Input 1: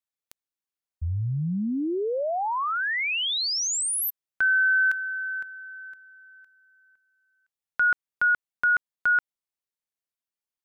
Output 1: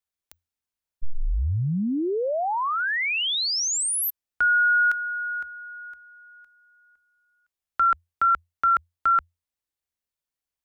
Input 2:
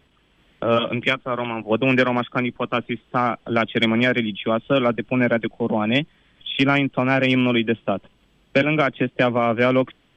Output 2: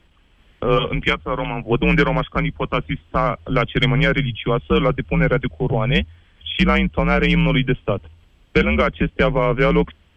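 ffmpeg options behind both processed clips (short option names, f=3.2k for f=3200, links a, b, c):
-af "lowshelf=f=66:g=11.5,afreqshift=-86,volume=1.5dB"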